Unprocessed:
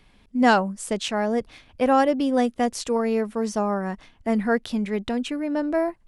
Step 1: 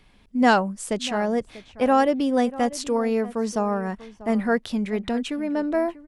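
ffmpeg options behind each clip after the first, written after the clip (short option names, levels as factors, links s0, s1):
-filter_complex "[0:a]asplit=2[s0][s1];[s1]adelay=641.4,volume=0.141,highshelf=f=4000:g=-14.4[s2];[s0][s2]amix=inputs=2:normalize=0"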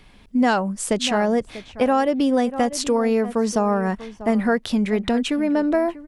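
-af "acompressor=threshold=0.0794:ratio=5,volume=2.11"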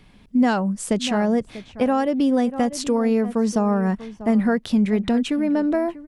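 -af "equalizer=f=170:w=0.82:g=7,volume=0.668"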